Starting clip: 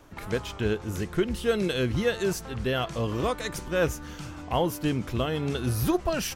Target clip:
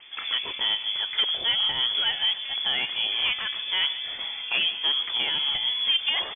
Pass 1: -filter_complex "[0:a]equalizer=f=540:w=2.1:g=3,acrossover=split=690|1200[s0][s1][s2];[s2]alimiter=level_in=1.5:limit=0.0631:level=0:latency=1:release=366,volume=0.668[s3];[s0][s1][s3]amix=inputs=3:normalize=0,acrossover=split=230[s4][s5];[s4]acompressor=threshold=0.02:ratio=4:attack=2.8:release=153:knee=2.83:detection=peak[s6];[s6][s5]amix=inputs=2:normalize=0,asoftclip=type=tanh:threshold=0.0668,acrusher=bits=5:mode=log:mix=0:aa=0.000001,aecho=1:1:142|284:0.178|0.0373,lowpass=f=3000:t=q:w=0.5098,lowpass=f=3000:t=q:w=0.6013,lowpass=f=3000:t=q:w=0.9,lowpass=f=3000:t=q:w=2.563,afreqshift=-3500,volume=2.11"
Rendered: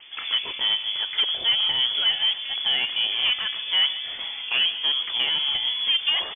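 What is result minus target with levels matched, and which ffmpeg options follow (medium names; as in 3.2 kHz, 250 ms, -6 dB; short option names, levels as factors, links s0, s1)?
500 Hz band -2.5 dB
-filter_complex "[0:a]equalizer=f=540:w=2.1:g=-8,acrossover=split=690|1200[s0][s1][s2];[s2]alimiter=level_in=1.5:limit=0.0631:level=0:latency=1:release=366,volume=0.668[s3];[s0][s1][s3]amix=inputs=3:normalize=0,acrossover=split=230[s4][s5];[s4]acompressor=threshold=0.02:ratio=4:attack=2.8:release=153:knee=2.83:detection=peak[s6];[s6][s5]amix=inputs=2:normalize=0,asoftclip=type=tanh:threshold=0.0668,acrusher=bits=5:mode=log:mix=0:aa=0.000001,aecho=1:1:142|284:0.178|0.0373,lowpass=f=3000:t=q:w=0.5098,lowpass=f=3000:t=q:w=0.6013,lowpass=f=3000:t=q:w=0.9,lowpass=f=3000:t=q:w=2.563,afreqshift=-3500,volume=2.11"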